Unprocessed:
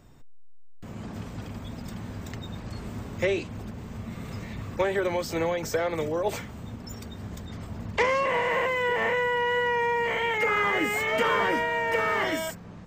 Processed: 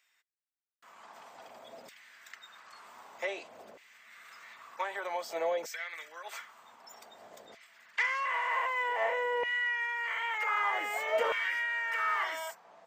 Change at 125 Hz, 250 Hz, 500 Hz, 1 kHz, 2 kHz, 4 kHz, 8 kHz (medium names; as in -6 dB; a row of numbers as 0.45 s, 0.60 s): under -35 dB, -23.5 dB, -10.0 dB, -6.0 dB, -4.5 dB, -7.0 dB, -8.0 dB